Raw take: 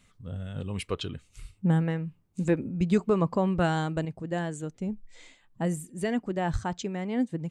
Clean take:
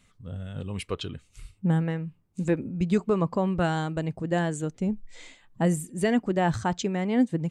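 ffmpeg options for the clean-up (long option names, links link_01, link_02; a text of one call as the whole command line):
ffmpeg -i in.wav -filter_complex "[0:a]asplit=3[link_01][link_02][link_03];[link_01]afade=type=out:start_time=6.52:duration=0.02[link_04];[link_02]highpass=frequency=140:width=0.5412,highpass=frequency=140:width=1.3066,afade=type=in:start_time=6.52:duration=0.02,afade=type=out:start_time=6.64:duration=0.02[link_05];[link_03]afade=type=in:start_time=6.64:duration=0.02[link_06];[link_04][link_05][link_06]amix=inputs=3:normalize=0,asetnsamples=nb_out_samples=441:pad=0,asendcmd='4.05 volume volume 5dB',volume=0dB" out.wav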